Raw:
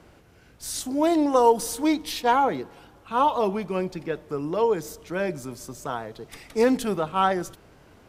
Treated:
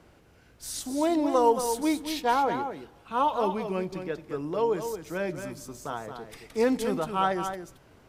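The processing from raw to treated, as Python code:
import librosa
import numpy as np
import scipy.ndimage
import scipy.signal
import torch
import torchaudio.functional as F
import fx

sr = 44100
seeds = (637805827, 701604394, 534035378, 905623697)

y = x + 10.0 ** (-8.0 / 20.0) * np.pad(x, (int(223 * sr / 1000.0), 0))[:len(x)]
y = y * librosa.db_to_amplitude(-4.0)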